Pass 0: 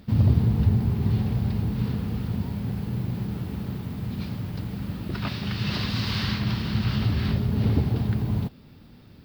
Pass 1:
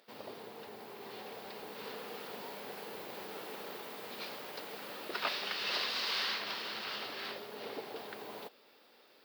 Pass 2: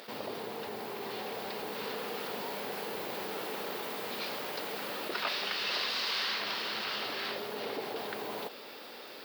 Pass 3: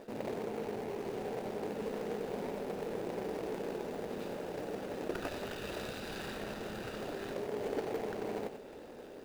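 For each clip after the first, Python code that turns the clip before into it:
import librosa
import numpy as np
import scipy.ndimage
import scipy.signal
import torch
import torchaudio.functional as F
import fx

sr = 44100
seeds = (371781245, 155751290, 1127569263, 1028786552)

y1 = fx.rider(x, sr, range_db=4, speed_s=0.5)
y1 = scipy.signal.sosfilt(scipy.signal.cheby1(3, 1.0, 470.0, 'highpass', fs=sr, output='sos'), y1)
y1 = y1 * 10.0 ** (-2.5 / 20.0)
y2 = fx.env_flatten(y1, sr, amount_pct=50)
y3 = scipy.signal.medfilt(y2, 41)
y3 = y3 + 10.0 ** (-9.0 / 20.0) * np.pad(y3, (int(91 * sr / 1000.0), 0))[:len(y3)]
y3 = y3 * 10.0 ** (4.0 / 20.0)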